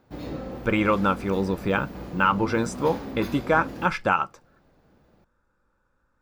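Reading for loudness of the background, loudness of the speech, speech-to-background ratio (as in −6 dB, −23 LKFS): −37.0 LKFS, −25.0 LKFS, 12.0 dB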